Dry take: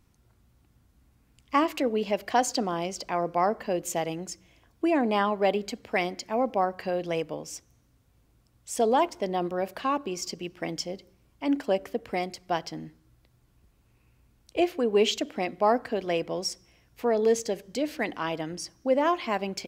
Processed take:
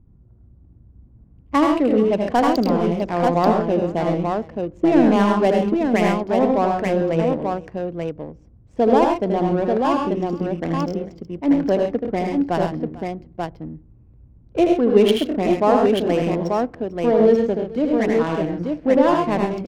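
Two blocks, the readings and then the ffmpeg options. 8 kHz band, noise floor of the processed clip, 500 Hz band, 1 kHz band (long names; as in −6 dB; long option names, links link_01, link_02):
can't be measured, −50 dBFS, +9.0 dB, +6.5 dB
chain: -af "adynamicsmooth=sensitivity=3:basefreq=730,lowshelf=frequency=360:gain=11.5,aecho=1:1:79|102|132|445|886:0.562|0.473|0.376|0.1|0.631,volume=2dB"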